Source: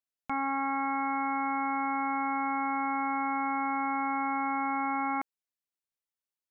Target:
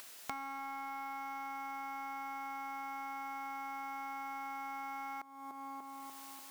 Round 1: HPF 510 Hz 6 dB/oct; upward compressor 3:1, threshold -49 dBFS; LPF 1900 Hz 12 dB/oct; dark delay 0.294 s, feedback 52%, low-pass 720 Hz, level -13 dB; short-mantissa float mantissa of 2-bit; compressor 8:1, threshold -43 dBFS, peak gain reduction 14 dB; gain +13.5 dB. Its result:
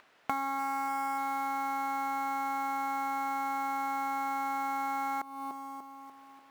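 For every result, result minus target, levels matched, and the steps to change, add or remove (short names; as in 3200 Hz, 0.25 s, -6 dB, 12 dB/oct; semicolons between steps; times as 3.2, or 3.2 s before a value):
compressor: peak gain reduction -10 dB; 2000 Hz band -3.5 dB
change: compressor 8:1, threshold -54.5 dBFS, peak gain reduction 24 dB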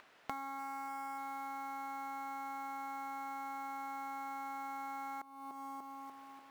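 2000 Hz band -3.0 dB
remove: LPF 1900 Hz 12 dB/oct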